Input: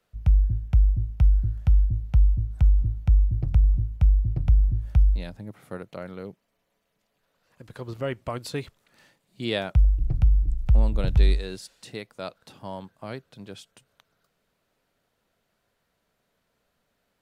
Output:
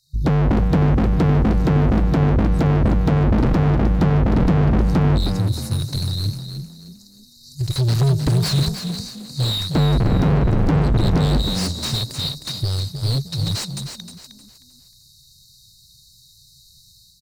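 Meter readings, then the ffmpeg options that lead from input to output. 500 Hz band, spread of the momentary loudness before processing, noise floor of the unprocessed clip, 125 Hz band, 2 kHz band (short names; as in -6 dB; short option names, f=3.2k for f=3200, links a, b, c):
+11.0 dB, 17 LU, -75 dBFS, +8.0 dB, +9.0 dB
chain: -filter_complex "[0:a]agate=range=-7dB:threshold=-46dB:ratio=16:detection=peak,afftfilt=real='re*(1-between(b*sr/4096,150,3700))':imag='im*(1-between(b*sr/4096,150,3700))':win_size=4096:overlap=0.75,asubboost=boost=2.5:cutoff=55,dynaudnorm=f=120:g=5:m=14.5dB,alimiter=limit=-4.5dB:level=0:latency=1:release=24,acompressor=threshold=-15dB:ratio=6,aeval=exprs='0.119*(abs(mod(val(0)/0.119+3,4)-2)-1)':c=same,asplit=2[a][b];[b]highpass=f=720:p=1,volume=33dB,asoftclip=type=tanh:threshold=-18dB[c];[a][c]amix=inputs=2:normalize=0,lowpass=f=1.7k:p=1,volume=-6dB,asplit=5[d][e][f][g][h];[e]adelay=310,afreqshift=36,volume=-8dB[i];[f]adelay=620,afreqshift=72,volume=-17.9dB[j];[g]adelay=930,afreqshift=108,volume=-27.8dB[k];[h]adelay=1240,afreqshift=144,volume=-37.7dB[l];[d][i][j][k][l]amix=inputs=5:normalize=0,volume=7.5dB"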